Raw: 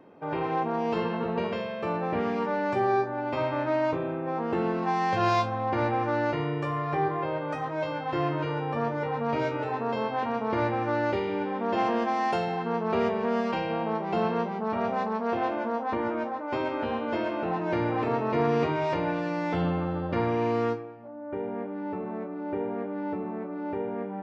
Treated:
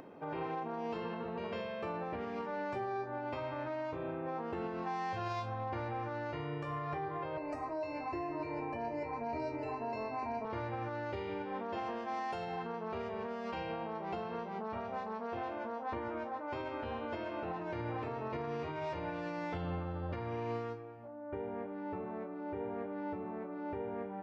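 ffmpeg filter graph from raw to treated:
ffmpeg -i in.wav -filter_complex "[0:a]asettb=1/sr,asplit=3[link_01][link_02][link_03];[link_01]atrim=end=7.374[link_04];[link_02]atrim=start=7.37:end=10.45,asetpts=PTS-STARTPTS,afade=type=in:duration=0.004:curve=qsin,afade=type=out:start_time=3.076:duration=0.004:curve=qsin,asuperstop=centerf=3400:order=8:qfactor=3.6,equalizer=frequency=1400:width_type=o:width=0.3:gain=-15,aecho=1:1:3:0.99,atrim=end_sample=135828[link_05];[link_03]atrim=start=10.446[link_06];[link_04][link_05]acrossfade=duration=0.004:curve1=hsin:curve2=qsin[link_07];[link_07][link_06]acrossfade=duration=0.004:curve1=qsin:curve2=hsin,asubboost=boost=6.5:cutoff=70,alimiter=level_in=0.5dB:limit=-24dB:level=0:latency=1:release=182,volume=-0.5dB,acompressor=mode=upward:threshold=-40dB:ratio=2.5,volume=-5.5dB" out.wav

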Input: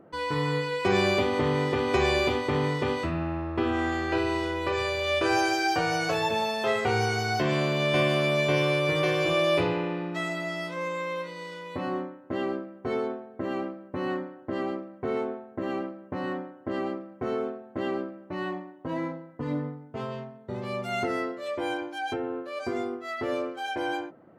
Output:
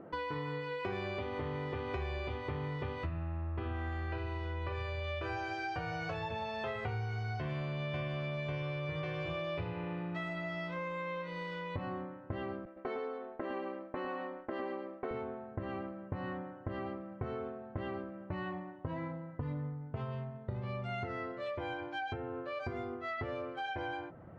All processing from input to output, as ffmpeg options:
ffmpeg -i in.wav -filter_complex "[0:a]asettb=1/sr,asplit=3[link_01][link_02][link_03];[link_01]atrim=end=12.654[link_04];[link_02]atrim=start=12.65:end=15.11,asetpts=PTS-STARTPTS,afade=type=in:duration=0.004:curve=qsin,afade=type=out:start_time=2.456:duration=0.004:curve=qsin,highpass=frequency=270:width=0.5412,highpass=frequency=270:width=1.3066,agate=range=-33dB:threshold=-42dB:ratio=3:release=100:detection=peak,aecho=1:1:107:0.631,atrim=end_sample=108486[link_05];[link_03]atrim=start=15.106[link_06];[link_04][link_05]acrossfade=duration=0.004:curve1=hsin:curve2=qsin[link_07];[link_07][link_06]acrossfade=duration=0.004:curve1=qsin:curve2=hsin,lowpass=3000,asubboost=boost=10:cutoff=88,acompressor=threshold=-39dB:ratio=6,volume=2.5dB" out.wav

